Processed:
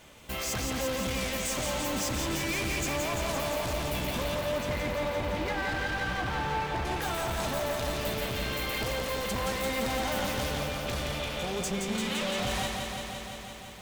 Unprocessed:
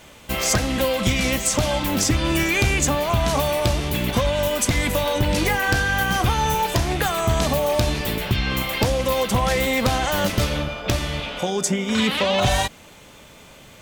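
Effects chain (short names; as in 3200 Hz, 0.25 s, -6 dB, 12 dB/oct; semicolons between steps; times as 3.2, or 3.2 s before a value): 4.35–6.85 LPF 2400 Hz 12 dB/oct; hard clip -23.5 dBFS, distortion -7 dB; lo-fi delay 0.171 s, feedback 80%, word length 9-bit, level -4.5 dB; gain -7.5 dB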